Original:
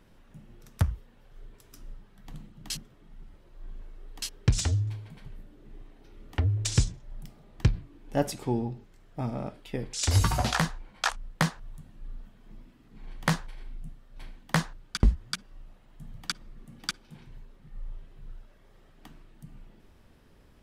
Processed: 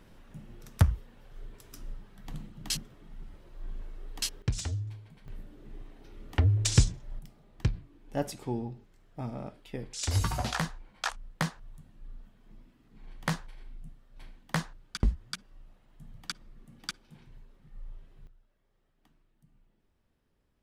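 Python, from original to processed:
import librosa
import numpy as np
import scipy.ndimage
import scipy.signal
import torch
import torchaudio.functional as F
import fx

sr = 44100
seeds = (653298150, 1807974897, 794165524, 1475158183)

y = fx.gain(x, sr, db=fx.steps((0.0, 3.0), (4.42, -7.0), (5.28, 2.0), (7.19, -5.0), (18.27, -17.0)))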